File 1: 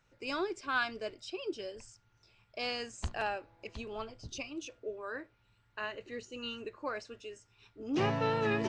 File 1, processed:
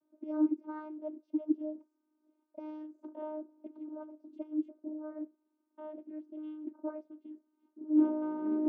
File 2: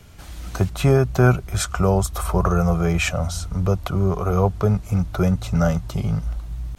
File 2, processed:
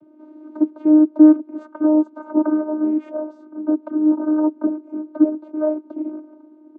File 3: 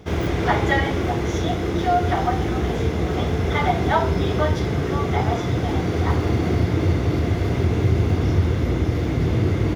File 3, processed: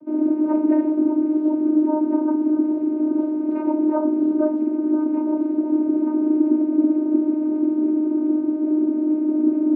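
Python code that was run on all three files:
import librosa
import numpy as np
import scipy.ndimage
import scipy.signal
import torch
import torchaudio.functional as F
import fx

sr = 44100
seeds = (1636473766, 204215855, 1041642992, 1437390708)

y = scipy.signal.savgol_filter(x, 65, 4, mode='constant')
y = fx.vocoder(y, sr, bands=16, carrier='saw', carrier_hz=307.0)
y = fx.small_body(y, sr, hz=(220.0, 390.0), ring_ms=20, db=14)
y = y * 10.0 ** (-7.0 / 20.0)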